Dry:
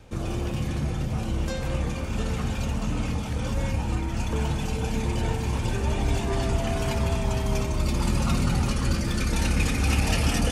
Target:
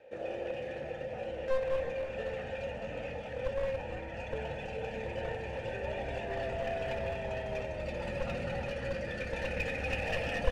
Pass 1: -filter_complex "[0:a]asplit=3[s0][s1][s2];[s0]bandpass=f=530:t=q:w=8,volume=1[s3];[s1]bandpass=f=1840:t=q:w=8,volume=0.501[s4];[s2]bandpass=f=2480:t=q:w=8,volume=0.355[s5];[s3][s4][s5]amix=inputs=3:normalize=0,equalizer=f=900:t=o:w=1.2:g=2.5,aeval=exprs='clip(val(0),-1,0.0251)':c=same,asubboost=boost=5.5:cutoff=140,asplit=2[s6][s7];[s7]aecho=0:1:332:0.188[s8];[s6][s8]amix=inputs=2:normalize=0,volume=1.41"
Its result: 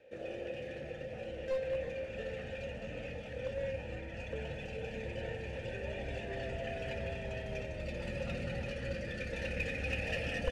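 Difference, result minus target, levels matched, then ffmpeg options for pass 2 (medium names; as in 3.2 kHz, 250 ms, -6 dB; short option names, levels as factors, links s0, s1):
1 kHz band -5.5 dB
-filter_complex "[0:a]asplit=3[s0][s1][s2];[s0]bandpass=f=530:t=q:w=8,volume=1[s3];[s1]bandpass=f=1840:t=q:w=8,volume=0.501[s4];[s2]bandpass=f=2480:t=q:w=8,volume=0.355[s5];[s3][s4][s5]amix=inputs=3:normalize=0,equalizer=f=900:t=o:w=1.2:g=13.5,aeval=exprs='clip(val(0),-1,0.0251)':c=same,asubboost=boost=5.5:cutoff=140,asplit=2[s6][s7];[s7]aecho=0:1:332:0.188[s8];[s6][s8]amix=inputs=2:normalize=0,volume=1.41"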